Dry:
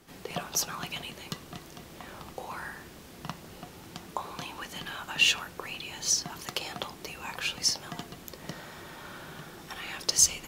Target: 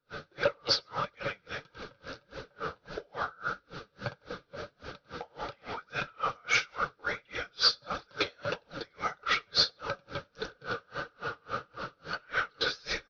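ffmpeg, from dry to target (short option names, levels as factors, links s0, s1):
-filter_complex "[0:a]aresample=16000,asoftclip=type=tanh:threshold=0.0447,aresample=44100,superequalizer=6b=0.631:8b=3.16:11b=3.98:14b=1.58,asplit=2[s0][s1];[s1]aecho=0:1:16|78:0.141|0.355[s2];[s0][s2]amix=inputs=2:normalize=0,flanger=delay=1.5:depth=9:regen=-2:speed=2:shape=triangular,acontrast=42,asetrate=35280,aresample=44100,aeval=exprs='val(0)*pow(10,-35*(0.5-0.5*cos(2*PI*3.6*n/s))/20)':c=same,volume=1.41"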